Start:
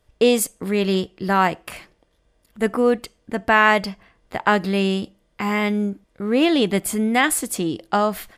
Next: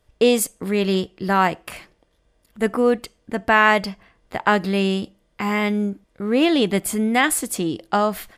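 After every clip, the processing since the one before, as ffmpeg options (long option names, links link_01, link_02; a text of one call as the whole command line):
ffmpeg -i in.wav -af anull out.wav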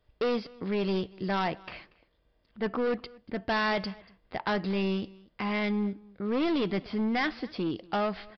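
ffmpeg -i in.wav -af "aresample=11025,asoftclip=type=hard:threshold=-18dB,aresample=44100,aecho=1:1:236:0.0668,volume=-6.5dB" out.wav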